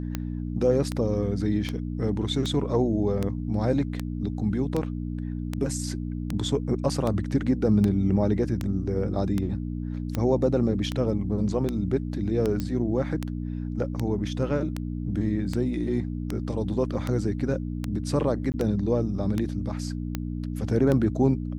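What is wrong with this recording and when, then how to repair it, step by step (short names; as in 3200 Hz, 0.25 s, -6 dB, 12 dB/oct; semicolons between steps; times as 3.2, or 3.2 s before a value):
hum 60 Hz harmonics 5 -31 dBFS
tick 78 rpm -14 dBFS
12.6 pop -16 dBFS
18.52–18.54 gap 19 ms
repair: de-click; de-hum 60 Hz, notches 5; interpolate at 18.52, 19 ms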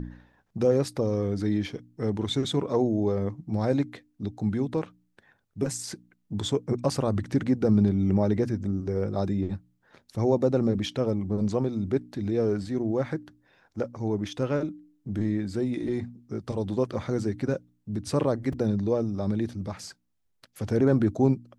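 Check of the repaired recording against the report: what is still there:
12.6 pop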